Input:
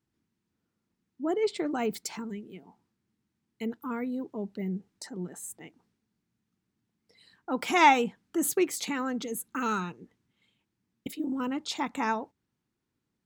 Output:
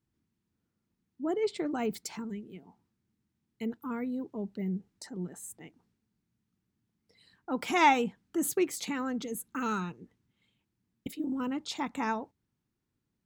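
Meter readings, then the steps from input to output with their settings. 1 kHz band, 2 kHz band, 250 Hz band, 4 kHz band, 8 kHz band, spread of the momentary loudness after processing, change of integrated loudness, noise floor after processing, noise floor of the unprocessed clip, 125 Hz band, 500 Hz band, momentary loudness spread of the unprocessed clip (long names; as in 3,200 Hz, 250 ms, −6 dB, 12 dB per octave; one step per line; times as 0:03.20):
−3.0 dB, −3.5 dB, −1.5 dB, −3.5 dB, −3.5 dB, 15 LU, −2.5 dB, −83 dBFS, −83 dBFS, 0.0 dB, −2.5 dB, 15 LU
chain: low-shelf EQ 160 Hz +8 dB
level −3.5 dB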